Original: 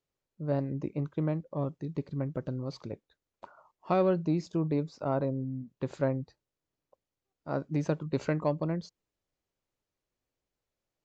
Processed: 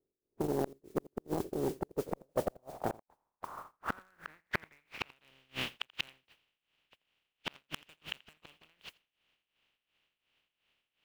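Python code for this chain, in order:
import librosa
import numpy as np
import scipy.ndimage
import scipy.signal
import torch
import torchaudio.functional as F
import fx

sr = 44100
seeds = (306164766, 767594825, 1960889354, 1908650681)

p1 = fx.spec_flatten(x, sr, power=0.19)
p2 = fx.filter_sweep_lowpass(p1, sr, from_hz=390.0, to_hz=2900.0, start_s=1.7, end_s=5.24, q=4.4)
p3 = (np.mod(10.0 ** (13.0 / 20.0) * p2 + 1.0, 2.0) - 1.0) / 10.0 ** (13.0 / 20.0)
p4 = p2 + (p3 * 10.0 ** (-4.5 / 20.0))
p5 = fx.mod_noise(p4, sr, seeds[0], snr_db=19)
p6 = p5 * (1.0 - 0.79 / 2.0 + 0.79 / 2.0 * np.cos(2.0 * np.pi * 2.8 * (np.arange(len(p5)) / sr)))
p7 = fx.gate_flip(p6, sr, shuts_db=-23.0, range_db=-42)
p8 = p7 + fx.echo_single(p7, sr, ms=84, db=-23.5, dry=0)
p9 = fx.transformer_sat(p8, sr, knee_hz=1100.0)
y = p9 * 10.0 ** (6.5 / 20.0)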